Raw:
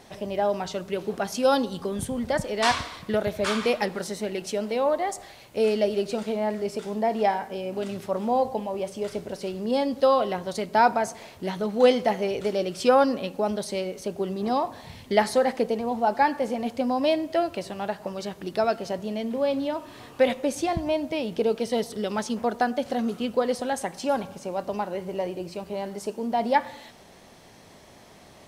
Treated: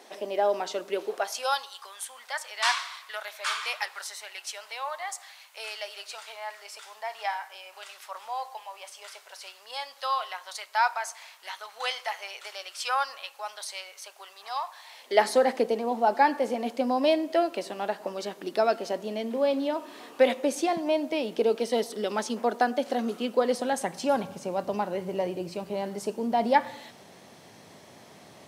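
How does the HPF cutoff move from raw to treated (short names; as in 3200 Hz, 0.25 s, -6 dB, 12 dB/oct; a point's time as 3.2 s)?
HPF 24 dB/oct
0.97 s 300 Hz
1.6 s 960 Hz
14.84 s 960 Hz
15.28 s 240 Hz
23.37 s 240 Hz
24.07 s 100 Hz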